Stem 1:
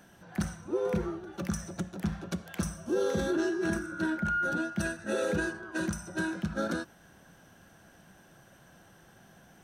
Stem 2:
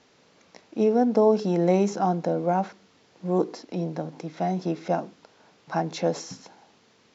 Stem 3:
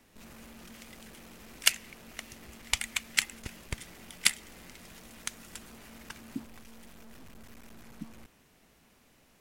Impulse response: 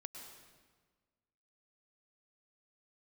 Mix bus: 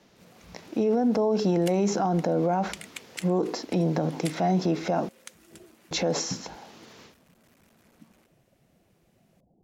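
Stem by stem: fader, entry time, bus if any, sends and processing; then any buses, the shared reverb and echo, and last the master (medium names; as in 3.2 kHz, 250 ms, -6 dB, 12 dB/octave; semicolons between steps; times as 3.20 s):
-11.0 dB, 0.00 s, no send, compressor with a negative ratio -42 dBFS, ratio -1; steep low-pass 690 Hz 36 dB/octave; reverb removal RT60 1.1 s
-2.5 dB, 0.00 s, muted 5.09–5.91 s, no send, level rider gain up to 14.5 dB
-8.0 dB, 0.00 s, no send, Bessel high-pass 200 Hz, order 2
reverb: none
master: peak limiter -16.5 dBFS, peak gain reduction 12.5 dB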